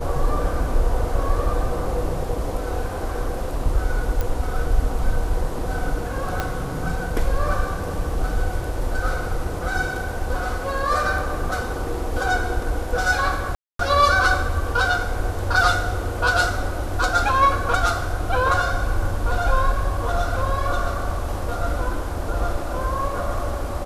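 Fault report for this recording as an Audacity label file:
4.210000	4.210000	pop -10 dBFS
6.400000	6.400000	pop -9 dBFS
13.550000	13.790000	dropout 243 ms

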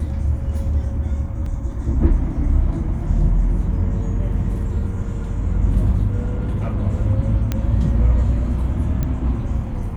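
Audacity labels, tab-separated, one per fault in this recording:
1.460000	1.460000	dropout 3.2 ms
6.250000	6.780000	clipped -17.5 dBFS
7.520000	7.520000	pop -8 dBFS
9.030000	9.030000	pop -11 dBFS

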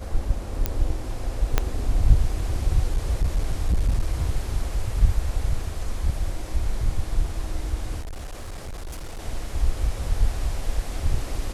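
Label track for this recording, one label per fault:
0.660000	0.660000	pop -8 dBFS
1.580000	1.580000	pop -5 dBFS
2.910000	4.130000	clipped -16.5 dBFS
8.000000	9.200000	clipped -30 dBFS

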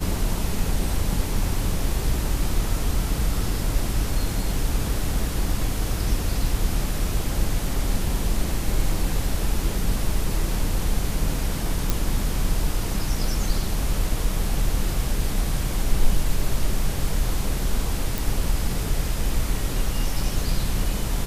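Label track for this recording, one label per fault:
11.900000	11.900000	pop
18.180000	18.180000	pop

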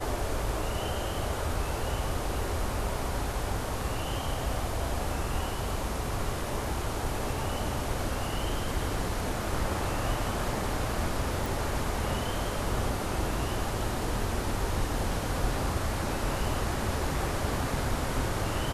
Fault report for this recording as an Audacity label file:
11.460000	11.460000	pop

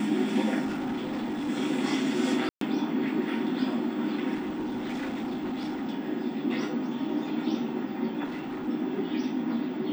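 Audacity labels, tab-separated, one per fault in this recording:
0.640000	1.500000	clipped -28 dBFS
2.490000	2.610000	dropout 123 ms
4.340000	5.890000	clipped -29 dBFS
8.240000	8.690000	clipped -31.5 dBFS

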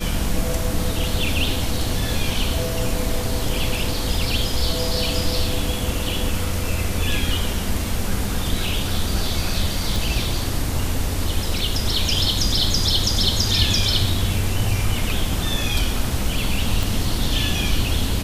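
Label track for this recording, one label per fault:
9.960000	9.960000	pop
16.830000	16.830000	pop

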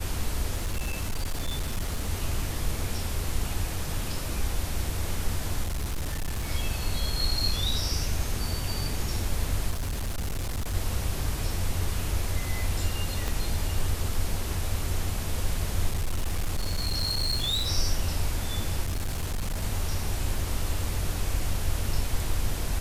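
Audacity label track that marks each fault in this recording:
0.550000	2.100000	clipped -24.5 dBFS
5.640000	6.490000	clipped -26 dBFS
9.700000	10.750000	clipped -26.5 dBFS
13.280000	13.280000	pop
15.910000	17.700000	clipped -23 dBFS
18.830000	19.640000	clipped -25.5 dBFS

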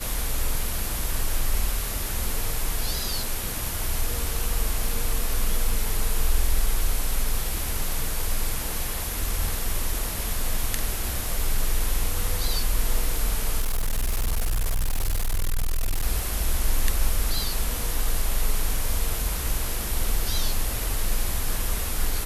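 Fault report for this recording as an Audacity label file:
13.600000	16.060000	clipped -20 dBFS

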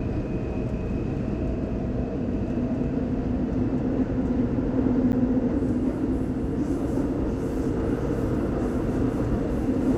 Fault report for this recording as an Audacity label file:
5.120000	5.130000	dropout 9.8 ms

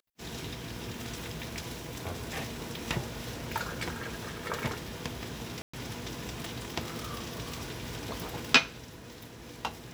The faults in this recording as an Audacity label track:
5.620000	5.740000	dropout 115 ms

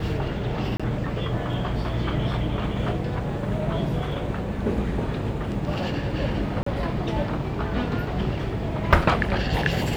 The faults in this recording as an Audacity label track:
0.770000	0.800000	dropout 26 ms
6.630000	6.660000	dropout 34 ms

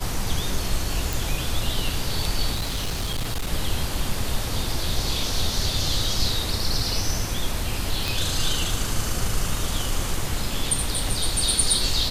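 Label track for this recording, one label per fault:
1.130000	1.130000	pop
2.540000	3.530000	clipped -22 dBFS
8.080000	8.080000	pop

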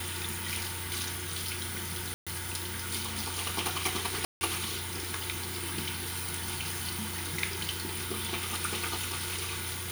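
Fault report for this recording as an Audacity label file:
2.140000	2.270000	dropout 126 ms
4.250000	4.410000	dropout 160 ms

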